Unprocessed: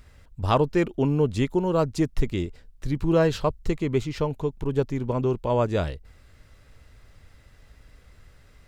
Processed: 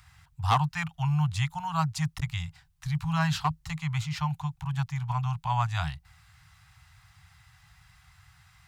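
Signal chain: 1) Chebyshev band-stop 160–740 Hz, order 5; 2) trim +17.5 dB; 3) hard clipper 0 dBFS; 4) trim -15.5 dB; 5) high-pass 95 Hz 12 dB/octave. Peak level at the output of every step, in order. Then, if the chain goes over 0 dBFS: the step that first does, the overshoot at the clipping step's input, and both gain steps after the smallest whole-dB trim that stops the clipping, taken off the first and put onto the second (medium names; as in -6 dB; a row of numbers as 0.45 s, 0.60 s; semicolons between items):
-10.5 dBFS, +7.0 dBFS, 0.0 dBFS, -15.5 dBFS, -11.5 dBFS; step 2, 7.0 dB; step 2 +10.5 dB, step 4 -8.5 dB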